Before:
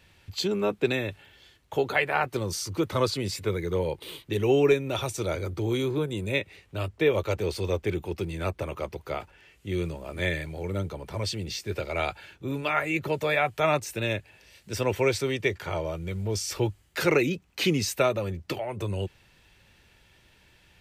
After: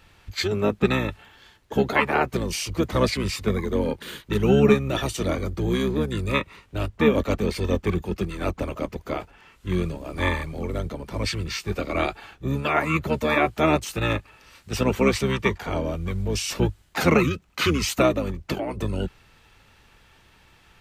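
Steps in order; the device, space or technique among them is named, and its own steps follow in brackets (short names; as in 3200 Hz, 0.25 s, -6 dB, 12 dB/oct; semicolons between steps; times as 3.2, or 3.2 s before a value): octave pedal (harmoniser -12 st -2 dB); gain +2 dB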